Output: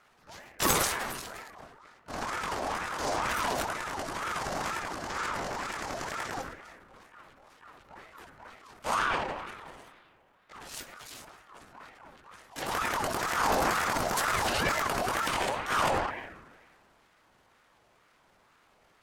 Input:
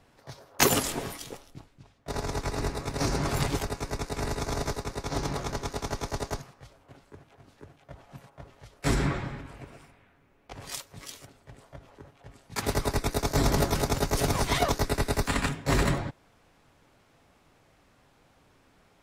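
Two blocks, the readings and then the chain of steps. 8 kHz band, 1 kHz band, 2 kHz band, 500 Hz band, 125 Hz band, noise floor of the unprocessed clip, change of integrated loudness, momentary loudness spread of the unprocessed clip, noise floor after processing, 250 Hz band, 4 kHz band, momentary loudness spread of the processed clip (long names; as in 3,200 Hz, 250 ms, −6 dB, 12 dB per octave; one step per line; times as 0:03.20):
−2.0 dB, +3.5 dB, +3.0 dB, −3.5 dB, −12.5 dB, −63 dBFS, −1.5 dB, 20 LU, −65 dBFS, −7.5 dB, −1.5 dB, 21 LU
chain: delay with a band-pass on its return 153 ms, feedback 59%, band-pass 680 Hz, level −13 dB
transient designer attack −7 dB, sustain +9 dB
ring modulator whose carrier an LFO sweeps 1,000 Hz, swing 35%, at 2.1 Hz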